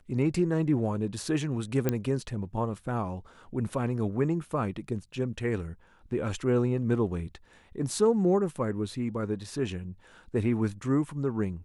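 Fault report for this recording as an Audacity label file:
1.890000	1.890000	pop -12 dBFS

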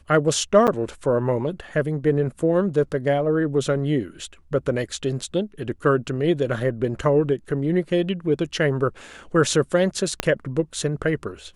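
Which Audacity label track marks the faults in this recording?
0.670000	0.680000	gap 7.6 ms
10.200000	10.200000	pop -6 dBFS

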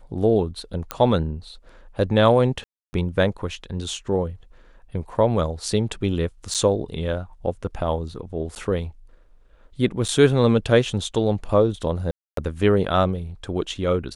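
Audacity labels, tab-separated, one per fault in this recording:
0.910000	0.910000	pop -8 dBFS
2.640000	2.930000	gap 0.29 s
6.540000	6.550000	gap 7.3 ms
8.550000	8.560000	gap 9.7 ms
10.080000	10.090000	gap 7 ms
12.110000	12.370000	gap 0.263 s

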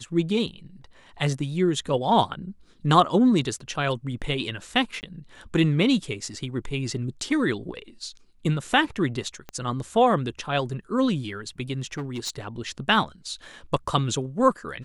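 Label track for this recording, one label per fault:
5.010000	5.030000	gap 19 ms
9.490000	9.490000	pop -21 dBFS
11.930000	12.300000	clipped -26 dBFS

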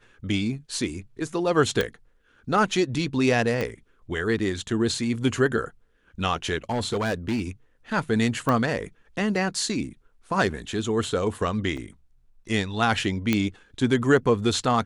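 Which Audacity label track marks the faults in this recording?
1.810000	1.810000	pop -10 dBFS
3.610000	3.610000	pop -14 dBFS
6.700000	7.410000	clipped -21.5 dBFS
8.490000	8.490000	pop -12 dBFS
11.770000	11.780000	gap 5 ms
13.330000	13.330000	pop -8 dBFS

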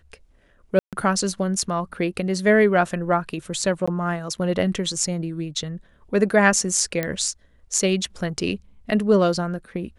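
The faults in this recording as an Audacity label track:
0.790000	0.930000	gap 0.137 s
3.860000	3.880000	gap 15 ms
7.030000	7.030000	pop -10 dBFS

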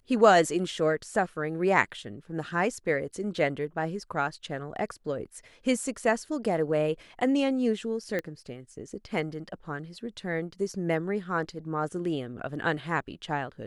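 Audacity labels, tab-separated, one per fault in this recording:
8.190000	8.190000	pop -18 dBFS

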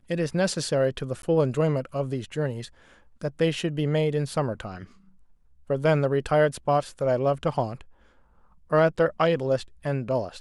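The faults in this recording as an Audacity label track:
1.220000	1.230000	gap 12 ms

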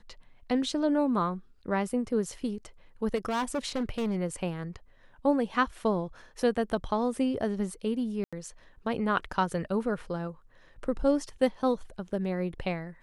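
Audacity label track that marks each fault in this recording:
3.150000	4.160000	clipped -26 dBFS
8.240000	8.330000	gap 86 ms

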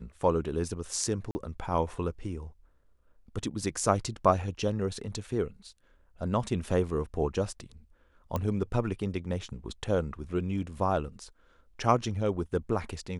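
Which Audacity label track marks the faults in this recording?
1.310000	1.350000	gap 40 ms
8.360000	8.360000	pop -17 dBFS

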